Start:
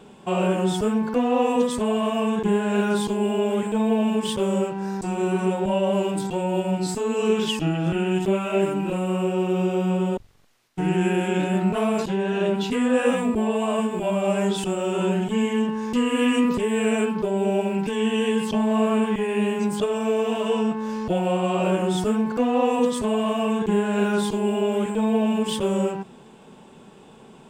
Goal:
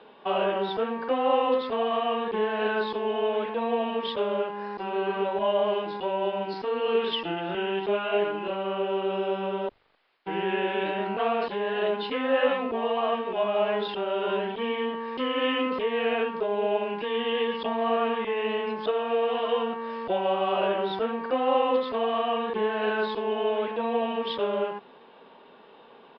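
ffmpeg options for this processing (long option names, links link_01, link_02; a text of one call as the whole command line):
ffmpeg -i in.wav -filter_complex "[0:a]asetrate=46305,aresample=44100,aresample=11025,aresample=44100,acrossover=split=360 4200:gain=0.112 1 0.0708[link_01][link_02][link_03];[link_01][link_02][link_03]amix=inputs=3:normalize=0" out.wav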